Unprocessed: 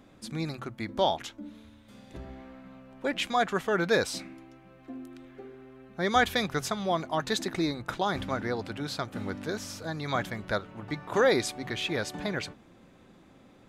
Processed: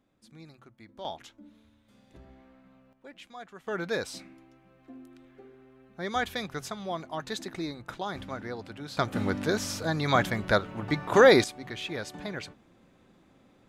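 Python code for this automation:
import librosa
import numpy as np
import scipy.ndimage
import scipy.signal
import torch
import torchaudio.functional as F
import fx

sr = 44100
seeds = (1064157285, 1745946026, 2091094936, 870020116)

y = fx.gain(x, sr, db=fx.steps((0.0, -16.5), (1.05, -9.5), (2.93, -18.5), (3.67, -6.0), (8.97, 6.0), (11.44, -4.5)))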